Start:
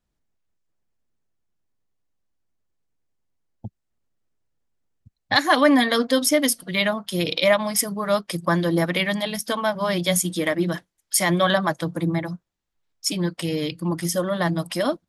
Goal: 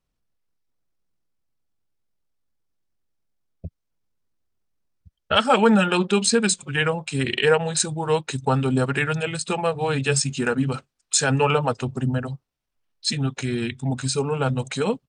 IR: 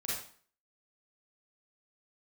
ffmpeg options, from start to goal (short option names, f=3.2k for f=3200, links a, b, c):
-af "asetrate=34006,aresample=44100,atempo=1.29684"